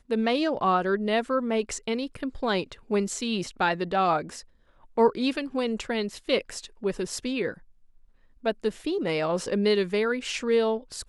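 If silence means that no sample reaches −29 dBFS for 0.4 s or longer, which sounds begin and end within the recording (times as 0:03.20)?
0:04.98–0:07.51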